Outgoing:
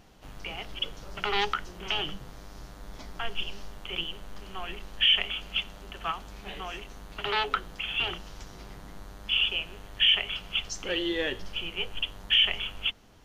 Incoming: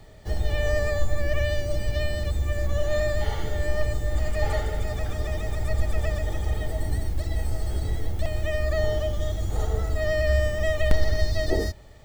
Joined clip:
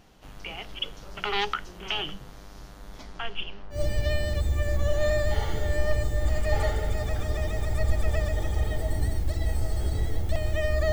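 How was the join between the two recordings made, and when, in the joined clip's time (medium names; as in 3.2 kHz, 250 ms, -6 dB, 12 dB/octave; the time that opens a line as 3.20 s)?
outgoing
3.03–3.80 s: low-pass 11 kHz -> 1.3 kHz
3.75 s: go over to incoming from 1.65 s, crossfade 0.10 s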